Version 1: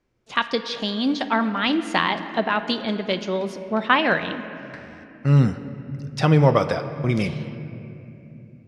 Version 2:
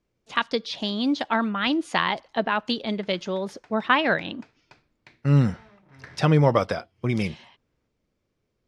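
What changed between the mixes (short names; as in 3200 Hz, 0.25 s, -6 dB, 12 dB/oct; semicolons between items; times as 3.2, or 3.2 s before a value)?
background: entry +1.30 s; reverb: off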